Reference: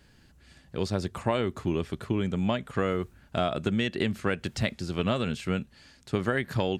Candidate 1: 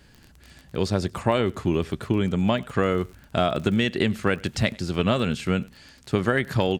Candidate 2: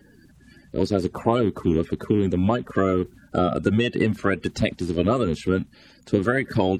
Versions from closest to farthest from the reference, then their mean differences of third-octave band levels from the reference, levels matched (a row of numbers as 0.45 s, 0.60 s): 1, 2; 1.0 dB, 4.0 dB